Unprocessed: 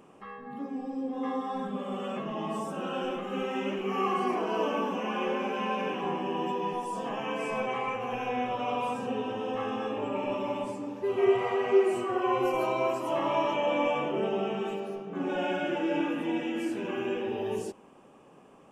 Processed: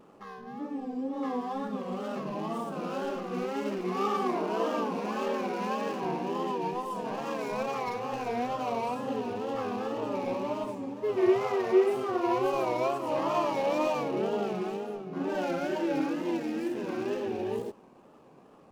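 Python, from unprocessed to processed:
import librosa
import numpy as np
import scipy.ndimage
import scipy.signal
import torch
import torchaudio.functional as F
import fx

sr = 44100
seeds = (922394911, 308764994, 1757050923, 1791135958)

y = scipy.ndimage.median_filter(x, 15, mode='constant')
y = fx.wow_flutter(y, sr, seeds[0], rate_hz=2.1, depth_cents=110.0)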